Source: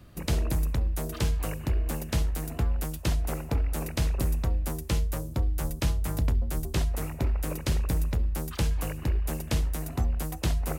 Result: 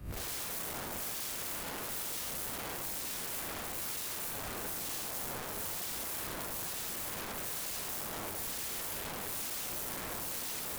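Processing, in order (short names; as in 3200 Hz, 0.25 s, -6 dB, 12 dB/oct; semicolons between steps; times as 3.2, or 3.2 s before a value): time blur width 0.212 s; wrapped overs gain 37 dB; high shelf 7400 Hz +8.5 dB; limiter -33.5 dBFS, peak gain reduction 5 dB; soft clip -39 dBFS, distortion -13 dB; three-band expander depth 70%; gain +6.5 dB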